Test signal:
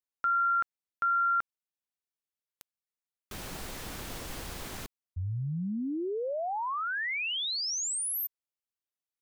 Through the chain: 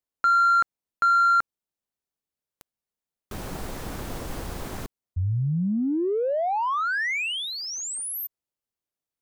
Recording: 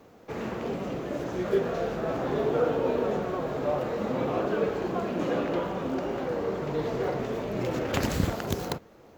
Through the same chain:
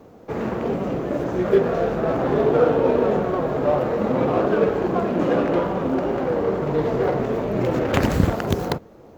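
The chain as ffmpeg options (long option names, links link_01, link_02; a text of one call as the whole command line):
ffmpeg -i in.wav -filter_complex "[0:a]asplit=2[link_01][link_02];[link_02]adynamicsmooth=sensitivity=4.5:basefreq=1200,volume=2.5dB[link_03];[link_01][link_03]amix=inputs=2:normalize=0,volume=1dB" out.wav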